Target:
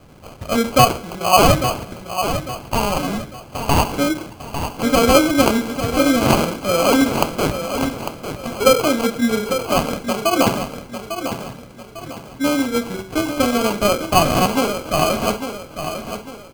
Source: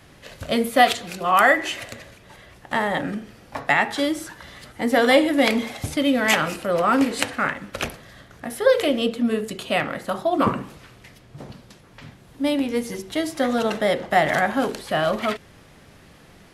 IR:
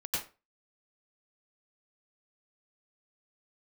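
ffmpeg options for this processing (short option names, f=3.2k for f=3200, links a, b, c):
-af "acrusher=samples=24:mix=1:aa=0.000001,aecho=1:1:850|1700|2550|3400:0.355|0.135|0.0512|0.0195,volume=3.5dB"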